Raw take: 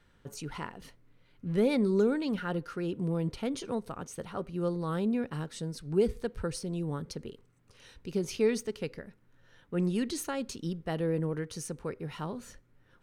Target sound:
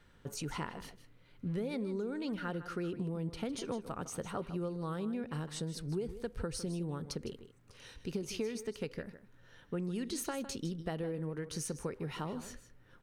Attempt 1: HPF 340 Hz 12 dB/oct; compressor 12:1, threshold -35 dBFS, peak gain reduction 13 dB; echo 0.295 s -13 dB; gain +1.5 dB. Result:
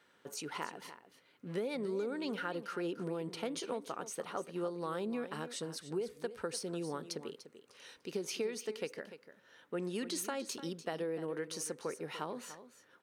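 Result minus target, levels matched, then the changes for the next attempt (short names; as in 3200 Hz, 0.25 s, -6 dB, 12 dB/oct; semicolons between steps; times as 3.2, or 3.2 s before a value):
echo 0.138 s late; 250 Hz band -2.5 dB
change: echo 0.157 s -13 dB; remove: HPF 340 Hz 12 dB/oct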